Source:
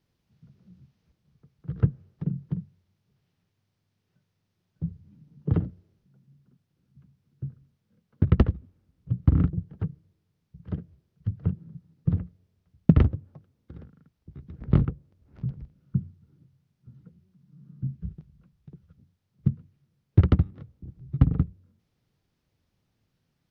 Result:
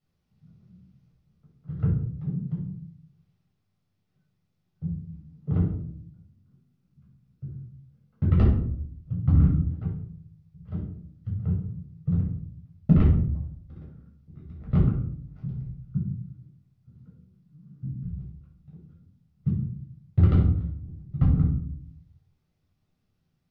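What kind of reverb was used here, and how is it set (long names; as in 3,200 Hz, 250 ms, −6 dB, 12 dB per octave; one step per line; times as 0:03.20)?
rectangular room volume 810 cubic metres, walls furnished, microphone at 6.7 metres
level −11 dB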